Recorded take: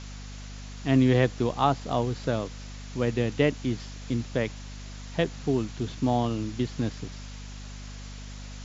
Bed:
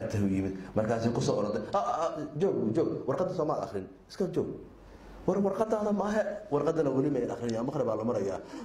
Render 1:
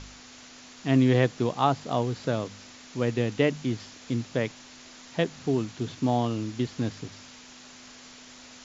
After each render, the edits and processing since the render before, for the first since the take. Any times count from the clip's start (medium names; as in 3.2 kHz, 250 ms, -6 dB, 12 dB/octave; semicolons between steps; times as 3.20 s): de-hum 50 Hz, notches 4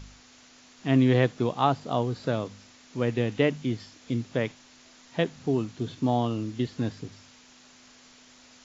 noise print and reduce 6 dB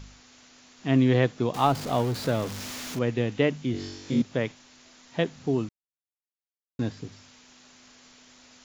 1.54–2.99 s: jump at every zero crossing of -32 dBFS; 3.72–4.22 s: flutter echo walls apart 3.6 m, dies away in 1 s; 5.69–6.79 s: mute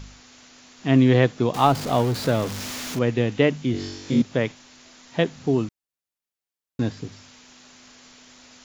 trim +4.5 dB